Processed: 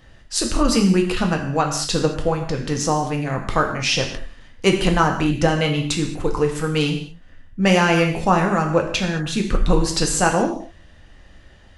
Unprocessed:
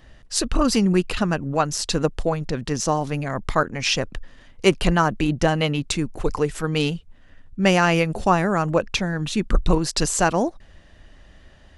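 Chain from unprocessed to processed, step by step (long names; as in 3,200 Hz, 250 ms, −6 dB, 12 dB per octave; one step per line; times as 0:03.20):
reverb whose tail is shaped and stops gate 250 ms falling, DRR 2 dB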